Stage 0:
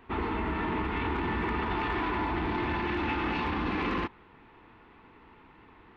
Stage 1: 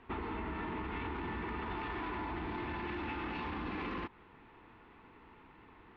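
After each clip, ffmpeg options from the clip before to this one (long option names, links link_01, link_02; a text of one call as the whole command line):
ffmpeg -i in.wav -af "lowpass=5100,acompressor=threshold=-33dB:ratio=6,volume=-3dB" out.wav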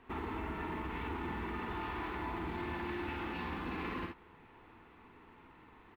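ffmpeg -i in.wav -filter_complex "[0:a]asplit=2[link_01][link_02];[link_02]acrusher=bits=5:mode=log:mix=0:aa=0.000001,volume=-10dB[link_03];[link_01][link_03]amix=inputs=2:normalize=0,aecho=1:1:51|63:0.596|0.422,volume=-4.5dB" out.wav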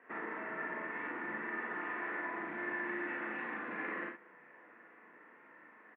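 ffmpeg -i in.wav -filter_complex "[0:a]highpass=frequency=240:width=0.5412,highpass=frequency=240:width=1.3066,equalizer=frequency=260:width_type=q:width=4:gain=-8,equalizer=frequency=390:width_type=q:width=4:gain=-9,equalizer=frequency=560:width_type=q:width=4:gain=6,equalizer=frequency=860:width_type=q:width=4:gain=-9,equalizer=frequency=1200:width_type=q:width=4:gain=-3,equalizer=frequency=1800:width_type=q:width=4:gain=9,lowpass=frequency=2000:width=0.5412,lowpass=frequency=2000:width=1.3066,asplit=2[link_01][link_02];[link_02]adelay=37,volume=-3dB[link_03];[link_01][link_03]amix=inputs=2:normalize=0,volume=1dB" out.wav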